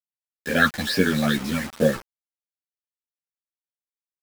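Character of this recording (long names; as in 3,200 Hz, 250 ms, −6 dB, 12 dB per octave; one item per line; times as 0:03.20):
phaser sweep stages 8, 2.3 Hz, lowest notch 370–1,200 Hz
a quantiser's noise floor 6 bits, dither none
a shimmering, thickened sound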